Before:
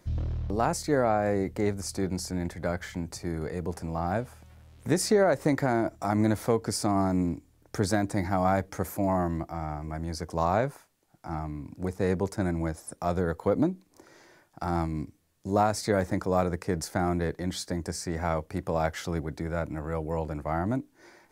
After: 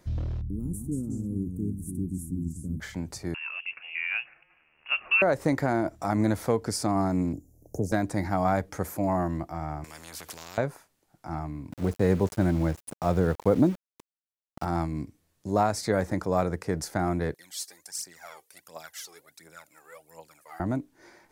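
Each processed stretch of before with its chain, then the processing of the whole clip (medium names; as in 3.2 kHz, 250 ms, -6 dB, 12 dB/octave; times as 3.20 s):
0.41–2.80 s: elliptic band-stop 280–9700 Hz + ever faster or slower copies 142 ms, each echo -2 st, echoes 2, each echo -6 dB
3.34–5.22 s: high-pass 320 Hz 24 dB/octave + frequency inversion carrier 3.1 kHz
7.33–7.92 s: elliptic band-stop 670–6600 Hz + peaking EQ 8.2 kHz -9.5 dB 0.36 oct + three bands compressed up and down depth 40%
9.84–10.58 s: compression 2.5:1, threshold -36 dBFS + spectrum-flattening compressor 4:1
11.72–14.65 s: bass shelf 450 Hz +5.5 dB + small samples zeroed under -39 dBFS
17.34–20.60 s: high-pass 110 Hz + differentiator + phaser 1.4 Hz, delay 2.7 ms, feedback 69%
whole clip: none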